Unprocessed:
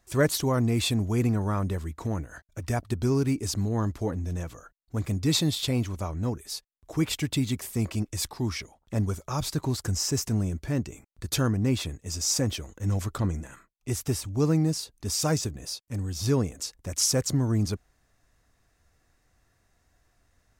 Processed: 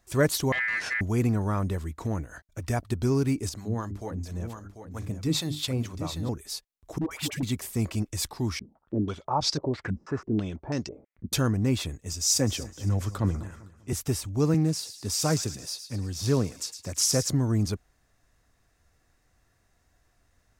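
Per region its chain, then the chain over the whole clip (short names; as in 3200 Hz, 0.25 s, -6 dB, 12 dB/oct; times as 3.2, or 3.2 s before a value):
0.52–1.01 minimum comb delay 0.91 ms + ring modulator 1900 Hz + air absorption 78 m
3.49–6.29 notches 50/100/150/200/250/300/350/400 Hz + harmonic tremolo 4.4 Hz, crossover 620 Hz + echo 0.742 s -9 dB
6.98–7.43 low shelf 180 Hz -9.5 dB + dispersion highs, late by 0.129 s, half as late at 600 Hz + hard clip -23.5 dBFS
8.59–11.33 low shelf 120 Hz -11.5 dB + stepped low-pass 6.1 Hz 220–5300 Hz
12.13–13.93 split-band echo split 1400 Hz, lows 0.196 s, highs 0.256 s, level -14 dB + three-band expander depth 40%
14.54–17.29 HPF 83 Hz 24 dB/oct + thin delay 0.11 s, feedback 48%, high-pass 2300 Hz, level -8.5 dB + Doppler distortion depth 0.12 ms
whole clip: dry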